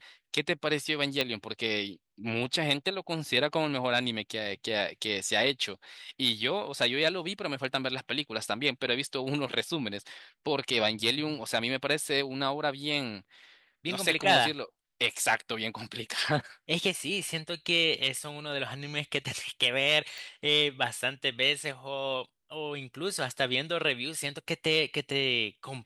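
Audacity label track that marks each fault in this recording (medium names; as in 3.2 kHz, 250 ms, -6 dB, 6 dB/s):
1.210000	1.210000	pop -13 dBFS
20.180000	20.180000	pop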